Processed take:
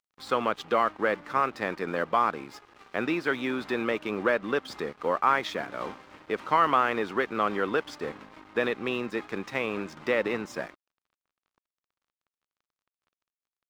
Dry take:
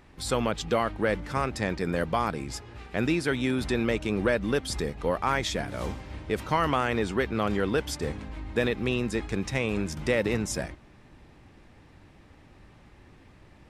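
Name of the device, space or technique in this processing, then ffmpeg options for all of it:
pocket radio on a weak battery: -af "highpass=270,lowpass=3700,aeval=exprs='sgn(val(0))*max(abs(val(0))-0.00316,0)':channel_layout=same,equalizer=frequency=1200:width_type=o:width=0.6:gain=7"

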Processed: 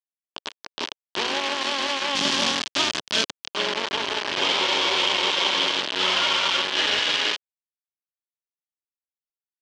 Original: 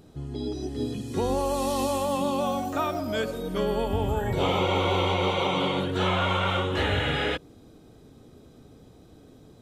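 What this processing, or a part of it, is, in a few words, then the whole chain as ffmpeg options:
hand-held game console: -filter_complex "[0:a]acrusher=bits=3:mix=0:aa=0.000001,highpass=500,equalizer=frequency=500:width_type=q:width=4:gain=-8,equalizer=frequency=750:width_type=q:width=4:gain=-9,equalizer=frequency=1300:width_type=q:width=4:gain=-6,equalizer=frequency=2000:width_type=q:width=4:gain=-3,equalizer=frequency=3100:width_type=q:width=4:gain=6,lowpass=frequency=5300:width=0.5412,lowpass=frequency=5300:width=1.3066,asettb=1/sr,asplit=3[link_01][link_02][link_03];[link_01]atrim=end=2.154[link_04];[link_02]atrim=start=2.15:end=3.48,asetpts=PTS-STARTPTS,afade=type=in:duration=0.004:curve=qsin,afade=type=out:start_time=1.326:duration=0.004:curve=qsin,bass=frequency=250:gain=15,treble=frequency=4000:gain=10[link_05];[link_03]atrim=start=3.476[link_06];[link_04][link_05]acrossfade=duration=0.004:curve1=hsin:curve2=qsin[link_07];[link_07][link_06]acrossfade=duration=0.004:curve1=qsin:curve2=hsin,volume=4.5dB"

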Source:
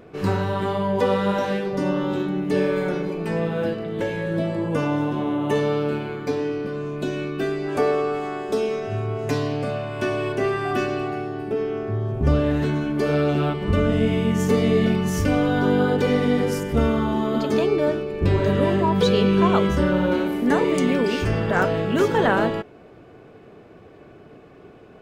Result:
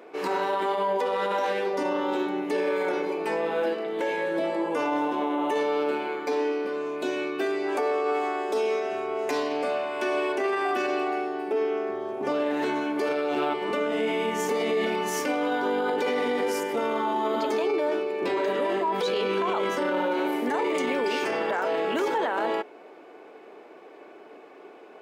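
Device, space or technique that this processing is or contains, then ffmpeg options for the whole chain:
laptop speaker: -af "highpass=frequency=310:width=0.5412,highpass=frequency=310:width=1.3066,equalizer=frequency=880:width_type=o:width=0.36:gain=7,equalizer=frequency=2200:width_type=o:width=0.3:gain=4,alimiter=limit=-18.5dB:level=0:latency=1:release=16"

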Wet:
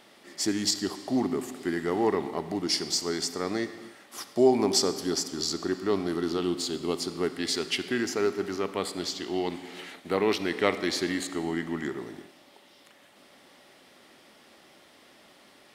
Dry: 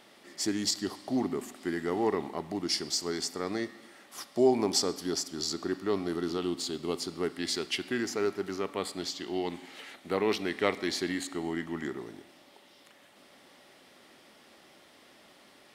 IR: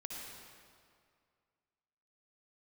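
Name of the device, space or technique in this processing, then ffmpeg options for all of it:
keyed gated reverb: -filter_complex "[0:a]asplit=3[link_01][link_02][link_03];[1:a]atrim=start_sample=2205[link_04];[link_02][link_04]afir=irnorm=-1:irlink=0[link_05];[link_03]apad=whole_len=694231[link_06];[link_05][link_06]sidechaingate=range=-33dB:threshold=-51dB:ratio=16:detection=peak,volume=-9dB[link_07];[link_01][link_07]amix=inputs=2:normalize=0,volume=1.5dB"

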